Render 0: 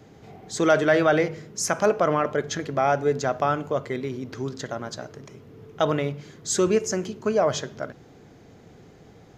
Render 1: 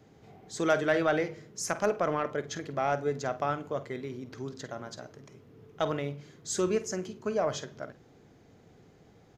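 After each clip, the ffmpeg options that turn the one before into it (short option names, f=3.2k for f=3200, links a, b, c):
-filter_complex "[0:a]aeval=exprs='0.447*(cos(1*acos(clip(val(0)/0.447,-1,1)))-cos(1*PI/2))+0.0398*(cos(3*acos(clip(val(0)/0.447,-1,1)))-cos(3*PI/2))':c=same,asplit=2[a][b];[b]adelay=49,volume=-14dB[c];[a][c]amix=inputs=2:normalize=0,volume=-5.5dB"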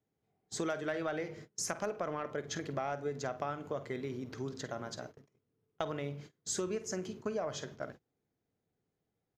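-af "agate=range=-27dB:threshold=-47dB:ratio=16:detection=peak,acompressor=threshold=-33dB:ratio=5"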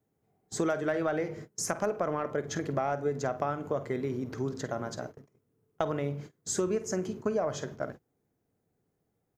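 -af "equalizer=f=3.6k:w=0.72:g=-8,volume=7dB"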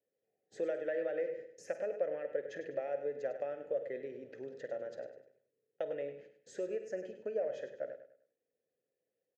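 -filter_complex "[0:a]asplit=3[a][b][c];[a]bandpass=f=530:t=q:w=8,volume=0dB[d];[b]bandpass=f=1.84k:t=q:w=8,volume=-6dB[e];[c]bandpass=f=2.48k:t=q:w=8,volume=-9dB[f];[d][e][f]amix=inputs=3:normalize=0,aecho=1:1:101|202|303|404:0.299|0.0985|0.0325|0.0107,volume=2.5dB"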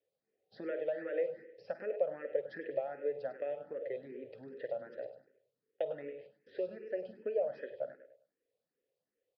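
-filter_complex "[0:a]aresample=11025,aresample=44100,asplit=2[a][b];[b]afreqshift=2.6[c];[a][c]amix=inputs=2:normalize=1,volume=3dB"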